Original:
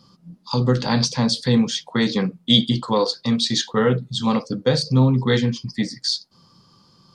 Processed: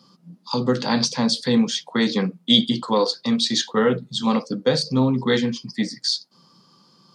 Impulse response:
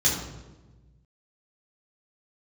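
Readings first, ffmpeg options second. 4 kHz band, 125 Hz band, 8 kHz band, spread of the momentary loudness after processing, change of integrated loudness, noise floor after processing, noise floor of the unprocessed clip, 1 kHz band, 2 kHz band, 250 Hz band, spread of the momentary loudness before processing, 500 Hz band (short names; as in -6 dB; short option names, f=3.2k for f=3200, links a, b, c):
0.0 dB, -7.5 dB, 0.0 dB, 7 LU, -1.0 dB, -58 dBFS, -57 dBFS, 0.0 dB, 0.0 dB, -0.5 dB, 7 LU, 0.0 dB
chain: -af "highpass=f=160:w=0.5412,highpass=f=160:w=1.3066"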